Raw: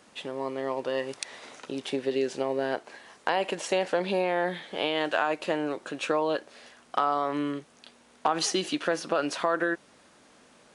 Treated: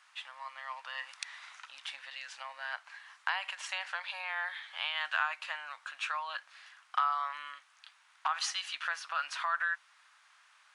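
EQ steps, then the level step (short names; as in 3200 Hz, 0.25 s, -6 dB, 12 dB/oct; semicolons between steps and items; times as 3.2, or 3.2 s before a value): inverse Chebyshev high-pass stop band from 430 Hz, stop band 50 dB; high shelf 4200 Hz -12 dB; +1.0 dB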